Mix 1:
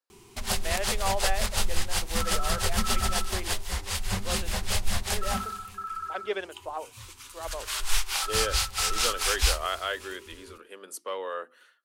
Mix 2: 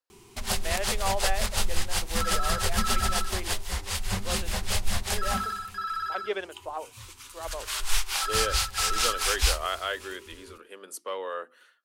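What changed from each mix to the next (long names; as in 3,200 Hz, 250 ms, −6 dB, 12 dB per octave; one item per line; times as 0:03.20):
second sound: remove Butterworth low-pass 1,300 Hz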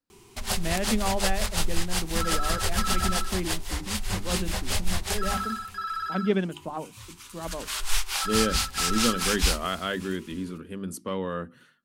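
speech: remove high-pass filter 460 Hz 24 dB per octave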